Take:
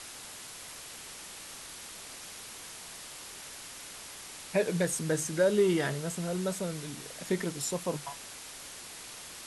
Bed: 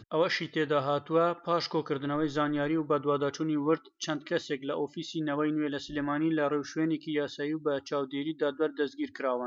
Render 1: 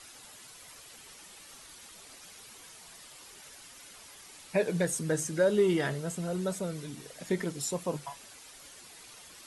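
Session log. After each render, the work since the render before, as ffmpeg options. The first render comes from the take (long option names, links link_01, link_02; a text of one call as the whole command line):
ffmpeg -i in.wav -af "afftdn=noise_reduction=9:noise_floor=-46" out.wav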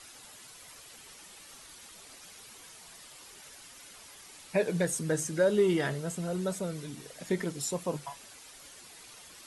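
ffmpeg -i in.wav -af anull out.wav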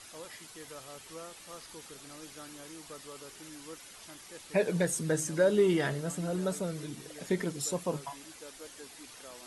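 ffmpeg -i in.wav -i bed.wav -filter_complex "[1:a]volume=-20.5dB[link_01];[0:a][link_01]amix=inputs=2:normalize=0" out.wav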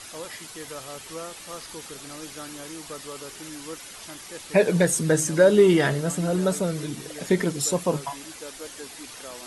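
ffmpeg -i in.wav -af "volume=9dB" out.wav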